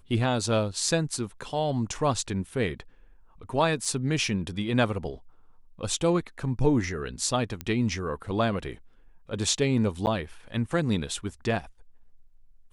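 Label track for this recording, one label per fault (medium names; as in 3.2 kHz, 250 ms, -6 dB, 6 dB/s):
3.850000	3.850000	dropout 3.3 ms
7.610000	7.610000	pop -17 dBFS
10.060000	10.070000	dropout 9.7 ms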